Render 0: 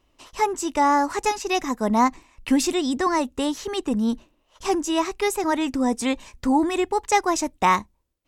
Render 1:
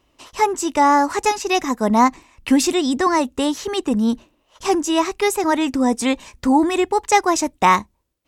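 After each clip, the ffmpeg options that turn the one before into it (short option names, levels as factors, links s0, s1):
-af "highpass=f=54:p=1,volume=1.68"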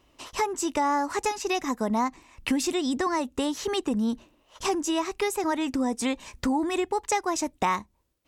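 -af "acompressor=threshold=0.0501:ratio=3"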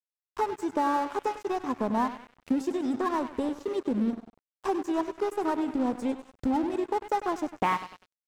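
-af "afwtdn=0.0398,aecho=1:1:99|198|297|396|495|594:0.266|0.149|0.0834|0.0467|0.0262|0.0147,aeval=exprs='sgn(val(0))*max(abs(val(0))-0.0106,0)':c=same"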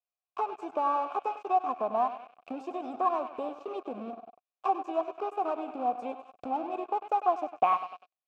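-filter_complex "[0:a]asplit=2[s0][s1];[s1]acompressor=threshold=0.02:ratio=6,volume=1[s2];[s0][s2]amix=inputs=2:normalize=0,asplit=3[s3][s4][s5];[s3]bandpass=f=730:t=q:w=8,volume=1[s6];[s4]bandpass=f=1090:t=q:w=8,volume=0.501[s7];[s5]bandpass=f=2440:t=q:w=8,volume=0.355[s8];[s6][s7][s8]amix=inputs=3:normalize=0,volume=2.24"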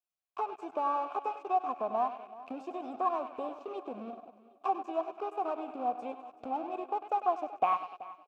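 -af "aecho=1:1:380|760|1140:0.126|0.0466|0.0172,volume=0.708"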